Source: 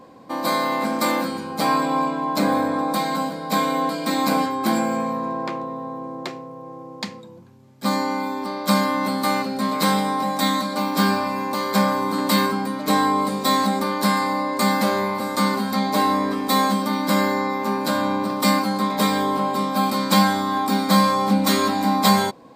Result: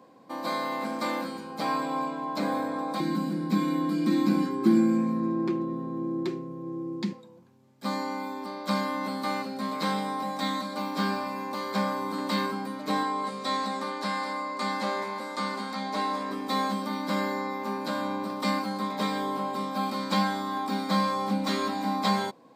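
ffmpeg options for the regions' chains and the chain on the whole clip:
ffmpeg -i in.wav -filter_complex "[0:a]asettb=1/sr,asplit=3[link_01][link_02][link_03];[link_01]atrim=end=3.004[link_04];[link_02]atrim=start=3:end=7.13,asetpts=PTS-STARTPTS,afade=type=in:duration=0.004:curve=qsin,afade=type=out:start_time=4.126:duration=0.004:curve=qsin,aecho=1:1:5.5:0.68,atrim=end_sample=182133,acompressor=threshold=-27dB:ratio=1.5:attack=3.2:release=140:knee=1:detection=peak,lowshelf=frequency=440:width_type=q:width=3:gain=10[link_05];[link_03]atrim=start=7.126[link_06];[link_04][link_05]acrossfade=duration=0.004:curve1=hsin:curve2=qsin[link_07];[link_07][link_06]acrossfade=duration=0.004:curve1=qsin:curve2=hsin,asettb=1/sr,asplit=3[link_08][link_09][link_10];[link_08]atrim=end=13.034[link_11];[link_09]atrim=start=13.03:end=16.31,asetpts=PTS-STARTPTS,afade=type=in:duration=0.004:curve=qsin,afade=type=out:start_time=3.276:duration=0.004:curve=qsin,lowpass=8500,lowshelf=frequency=280:gain=-8,aecho=1:1:207:0.299,atrim=end_sample=144648[link_12];[link_10]atrim=start=16.306[link_13];[link_11][link_12]acrossfade=duration=0.004:curve1=hsin:curve2=qsin[link_14];[link_14][link_13]acrossfade=duration=0.004:curve1=qsin:curve2=hsin,acrossover=split=6000[link_15][link_16];[link_16]acompressor=threshold=-43dB:ratio=4:attack=1:release=60[link_17];[link_15][link_17]amix=inputs=2:normalize=0,highpass=140,volume=-8.5dB" out.wav

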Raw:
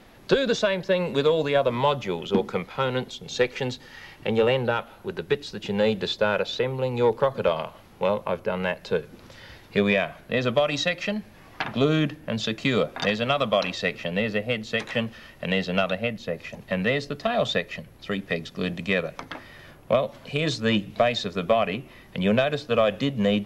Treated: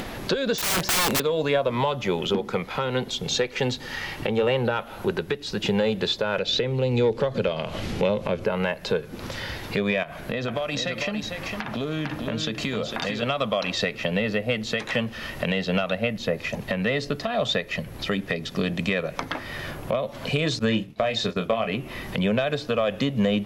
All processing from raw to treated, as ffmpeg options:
ffmpeg -i in.wav -filter_complex "[0:a]asettb=1/sr,asplit=3[link_01][link_02][link_03];[link_01]atrim=end=0.584[link_04];[link_02]atrim=start=0.58:end=1.2,asetpts=PTS-STARTPTS,afade=type=in:duration=0.004:curve=qsin,afade=type=out:start_time=0.616:duration=0.004:curve=qsin,highpass=frequency=42:poles=1,bass=frequency=250:gain=-1,treble=frequency=4000:gain=8,aeval=exprs='(mod(17.8*val(0)+1,2)-1)/17.8':channel_layout=same[link_05];[link_03]atrim=start=1.196[link_06];[link_04][link_05]acrossfade=duration=0.004:curve1=hsin:curve2=qsin[link_07];[link_07][link_06]acrossfade=duration=0.004:curve1=qsin:curve2=hsin,asettb=1/sr,asplit=3[link_08][link_09][link_10];[link_08]atrim=end=6.384[link_11];[link_09]atrim=start=6.38:end=8.45,asetpts=PTS-STARTPTS,afade=type=in:duration=0.004:curve=qsin,afade=type=out:start_time=2.066:duration=0.004:curve=qsin,lowpass=7100,acompressor=mode=upward:threshold=-23dB:ratio=2.5:attack=3.2:release=140:knee=2.83:detection=peak,equalizer=frequency=1000:width_type=o:width=1.3:gain=-10.5[link_12];[link_10]atrim=start=8.446[link_13];[link_11][link_12]acrossfade=duration=0.004:curve1=hsin:curve2=qsin[link_14];[link_14][link_13]acrossfade=duration=0.004:curve1=qsin:curve2=hsin,asettb=1/sr,asplit=3[link_15][link_16][link_17];[link_15]atrim=end=10.034[link_18];[link_16]atrim=start=10.03:end=13.23,asetpts=PTS-STARTPTS,afade=type=in:duration=0.004:curve=qsin,afade=type=out:start_time=3.196:duration=0.004:curve=qsin,acompressor=threshold=-35dB:ratio=5:attack=3.2:release=140:knee=1:detection=peak,aecho=1:1:452:0.473,atrim=end_sample=141120[link_19];[link_17]atrim=start=13.226[link_20];[link_18][link_19]acrossfade=duration=0.004:curve1=hsin:curve2=qsin[link_21];[link_21][link_20]acrossfade=duration=0.004:curve1=qsin:curve2=hsin,asettb=1/sr,asplit=3[link_22][link_23][link_24];[link_22]atrim=end=20.594[link_25];[link_23]atrim=start=20.59:end=21.7,asetpts=PTS-STARTPTS,afade=type=in:duration=0.004:curve=qsin,afade=type=out:start_time=1.106:duration=0.004:curve=qsin,agate=range=-33dB:threshold=-31dB:ratio=3:release=100:detection=peak,asplit=2[link_26][link_27];[link_27]adelay=27,volume=-7.5dB[link_28];[link_26][link_28]amix=inputs=2:normalize=0,atrim=end_sample=48951[link_29];[link_24]atrim=start=21.696[link_30];[link_25][link_29]acrossfade=duration=0.004:curve1=hsin:curve2=qsin[link_31];[link_31][link_30]acrossfade=duration=0.004:curve1=qsin:curve2=hsin,acompressor=threshold=-28dB:ratio=2.5,alimiter=limit=-22dB:level=0:latency=1:release=376,acompressor=mode=upward:threshold=-35dB:ratio=2.5,volume=9dB" out.wav

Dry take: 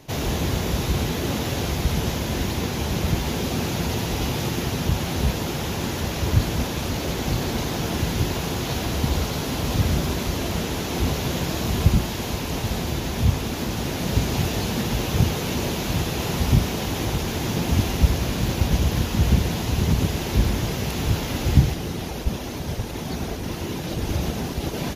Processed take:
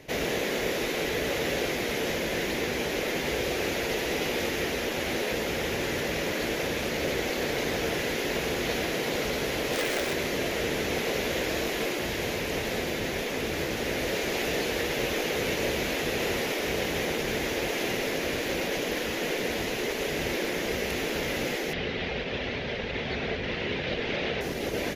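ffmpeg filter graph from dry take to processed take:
ffmpeg -i in.wav -filter_complex "[0:a]asettb=1/sr,asplit=3[link_01][link_02][link_03];[link_01]atrim=end=9.734[link_04];[link_02]atrim=start=9.73:end=10.13,asetpts=PTS-STARTPTS,afade=type=in:duration=0.004:curve=qsin,afade=type=out:start_time=0.396:duration=0.004:curve=qsin,lowpass=9900,acrusher=bits=2:mode=log:mix=0:aa=0.000001[link_05];[link_03]atrim=start=10.126[link_06];[link_04][link_05]acrossfade=duration=0.004:curve1=hsin:curve2=qsin[link_07];[link_07][link_06]acrossfade=duration=0.004:curve1=qsin:curve2=hsin,asettb=1/sr,asplit=3[link_08][link_09][link_10];[link_08]atrim=end=21.734[link_11];[link_09]atrim=start=21.73:end=24.41,asetpts=PTS-STARTPTS,afade=type=in:duration=0.004:curve=qsin,afade=type=out:start_time=2.676:duration=0.004:curve=qsin,lowpass=frequency=3700:width=0.5412,lowpass=frequency=3700:width=1.3066,highshelf=frequency=2300:gain=9.5,bandreject=frequency=320:width=6.9[link_12];[link_10]atrim=start=24.406[link_13];[link_11][link_12]acrossfade=duration=0.004:curve1=hsin:curve2=qsin[link_14];[link_14][link_13]acrossfade=duration=0.004:curve1=qsin:curve2=hsin,afftfilt=real='re*lt(hypot(re,im),0.316)':imag='im*lt(hypot(re,im),0.316)':win_size=1024:overlap=0.75,equalizer=frequency=500:width_type=o:width=1:gain=9,equalizer=frequency=1000:width_type=o:width=1:gain=-5,equalizer=frequency=2000:width_type=o:width=1:gain=11,volume=-5dB" out.wav

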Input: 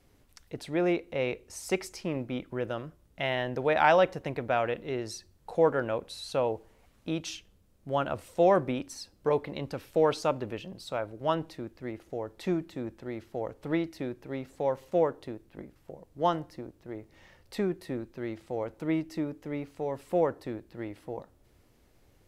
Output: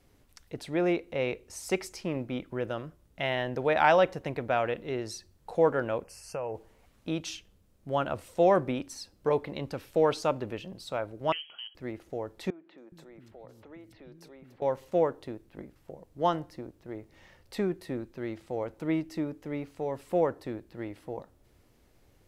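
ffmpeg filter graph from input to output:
ffmpeg -i in.wav -filter_complex "[0:a]asettb=1/sr,asplit=3[link_01][link_02][link_03];[link_01]atrim=end=6.044[link_04];[link_02]atrim=start=6.04:end=6.55,asetpts=PTS-STARTPTS,afade=type=in:duration=0.004:curve=qsin,afade=type=out:start_time=0.506:duration=0.004:curve=qsin,equalizer=frequency=270:width_type=o:width=0.33:gain=-14,acompressor=threshold=-30dB:ratio=6:attack=3.2:release=140:knee=1:detection=peak,asuperstop=centerf=3700:order=8:qfactor=2.1[link_05];[link_03]atrim=start=6.546[link_06];[link_04][link_05]acrossfade=duration=0.004:curve1=hsin:curve2=qsin[link_07];[link_07][link_06]acrossfade=duration=0.004:curve1=qsin:curve2=hsin,asettb=1/sr,asplit=3[link_08][link_09][link_10];[link_08]atrim=end=11.324[link_11];[link_09]atrim=start=11.32:end=11.75,asetpts=PTS-STARTPTS,afade=type=in:duration=0.004:curve=qsin,afade=type=out:start_time=0.426:duration=0.004:curve=qsin,lowpass=frequency=2800:width_type=q:width=0.5098,lowpass=frequency=2800:width_type=q:width=0.6013,lowpass=frequency=2800:width_type=q:width=0.9,lowpass=frequency=2800:width_type=q:width=2.563,afreqshift=-3300,acompressor=threshold=-44dB:ratio=1.5:attack=3.2:release=140:knee=1:detection=peak,highpass=110[link_12];[link_10]atrim=start=11.746[link_13];[link_11][link_12]acrossfade=duration=0.004:curve1=hsin:curve2=qsin[link_14];[link_14][link_13]acrossfade=duration=0.004:curve1=qsin:curve2=hsin,asettb=1/sr,asplit=3[link_15][link_16][link_17];[link_15]atrim=end=12.504[link_18];[link_16]atrim=start=12.5:end=14.62,asetpts=PTS-STARTPTS,afade=type=in:duration=0.004:curve=qsin,afade=type=out:start_time=2.116:duration=0.004:curve=qsin,acompressor=threshold=-49dB:ratio=3:attack=3.2:release=140:knee=1:detection=peak,acrossover=split=240|3500[link_19][link_20][link_21];[link_21]adelay=280[link_22];[link_19]adelay=420[link_23];[link_23][link_20][link_22]amix=inputs=3:normalize=0,atrim=end_sample=93492[link_24];[link_17]atrim=start=14.616[link_25];[link_18][link_24]acrossfade=duration=0.004:curve1=hsin:curve2=qsin[link_26];[link_26][link_25]acrossfade=duration=0.004:curve1=qsin:curve2=hsin" out.wav

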